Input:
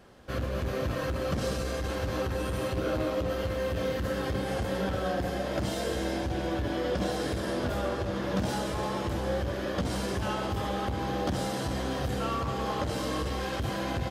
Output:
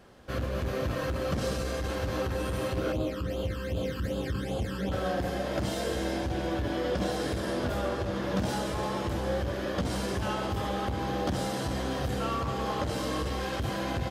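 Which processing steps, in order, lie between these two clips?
0:02.92–0:04.92: all-pass phaser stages 12, 2.6 Hz, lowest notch 640–1,900 Hz

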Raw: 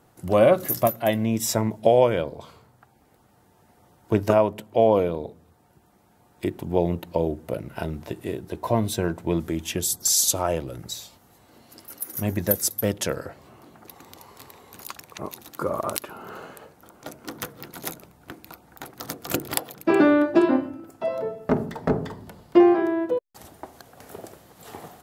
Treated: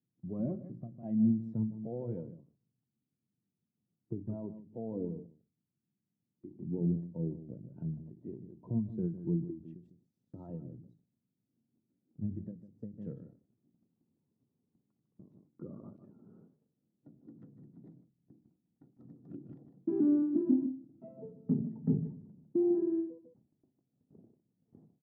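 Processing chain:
brickwall limiter −12 dBFS, peak gain reduction 9.5 dB
flat-topped band-pass 180 Hz, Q 1.2
single-tap delay 152 ms −8.5 dB
noise reduction from a noise print of the clip's start 8 dB
noise gate −60 dBFS, range −14 dB
every ending faded ahead of time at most 130 dB per second

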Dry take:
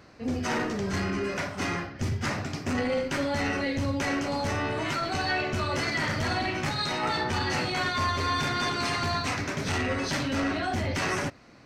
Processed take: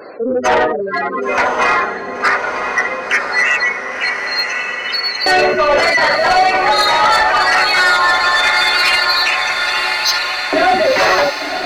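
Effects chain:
gate on every frequency bin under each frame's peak −15 dB strong
auto-filter high-pass saw up 0.19 Hz 450–5,100 Hz
soft clipping −26.5 dBFS, distortion −12 dB
on a send: feedback delay with all-pass diffusion 1,050 ms, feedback 61%, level −6 dB
on the sum: boost into a limiter +22 dB
level −3 dB

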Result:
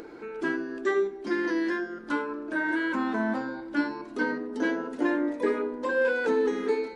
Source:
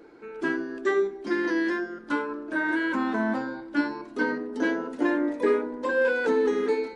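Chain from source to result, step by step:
hum removal 137.3 Hz, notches 31
in parallel at −1 dB: upward compression, threshold −26 dBFS
on the sum: level −7 dB

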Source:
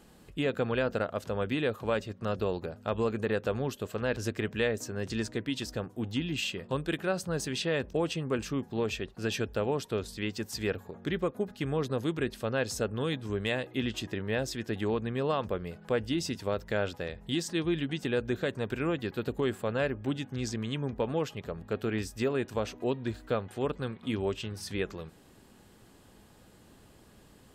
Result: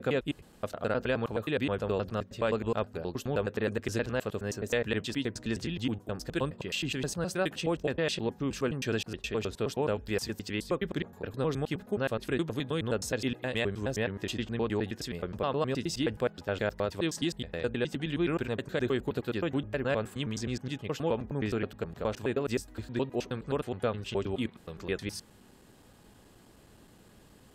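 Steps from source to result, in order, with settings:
slices reordered back to front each 105 ms, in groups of 6

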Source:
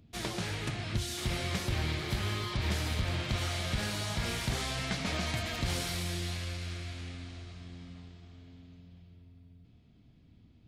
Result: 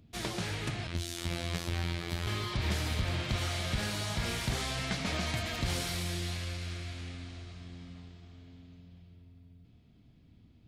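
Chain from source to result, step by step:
0:00.87–0:02.27: phases set to zero 85.7 Hz

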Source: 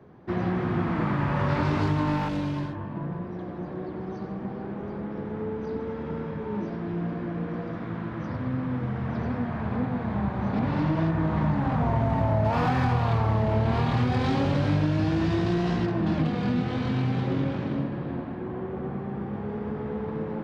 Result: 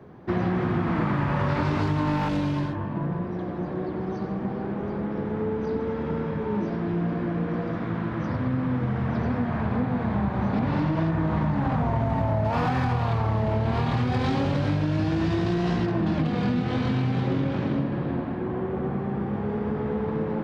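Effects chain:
downward compressor, threshold −25 dBFS, peak gain reduction 6.5 dB
level +4.5 dB

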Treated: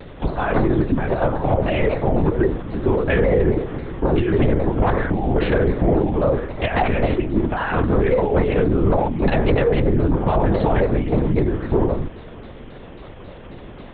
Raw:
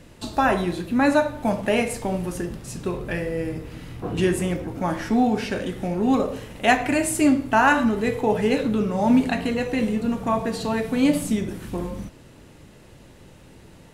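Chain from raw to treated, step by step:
adaptive Wiener filter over 15 samples
high-pass filter 190 Hz
notch filter 1,100 Hz, Q 17
compressor whose output falls as the input rises −27 dBFS, ratio −1
hum with harmonics 400 Hz, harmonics 9, −61 dBFS −1 dB per octave
linear-prediction vocoder at 8 kHz whisper
boost into a limiter +17.5 dB
pitch modulation by a square or saw wave saw down 3.7 Hz, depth 160 cents
level −7 dB

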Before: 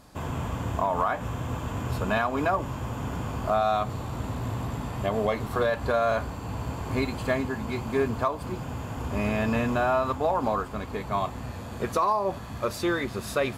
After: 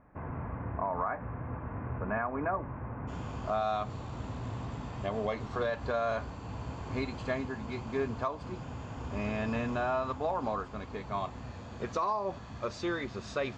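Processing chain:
Butterworth low-pass 2,200 Hz 48 dB per octave, from 0:03.07 7,000 Hz
level −7 dB

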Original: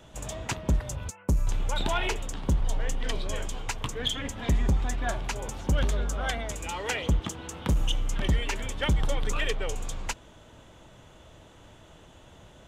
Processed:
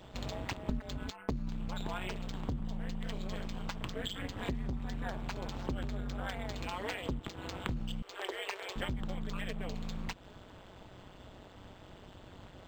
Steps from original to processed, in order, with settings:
amplitude modulation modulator 190 Hz, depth 90%
0:08.02–0:08.76: elliptic high-pass filter 370 Hz, stop band 40 dB
downward compressor 6 to 1, threshold −37 dBFS, peak gain reduction 14 dB
0:00.68–0:01.31: comb filter 4.7 ms, depth 72%
linearly interpolated sample-rate reduction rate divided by 4×
level +3.5 dB

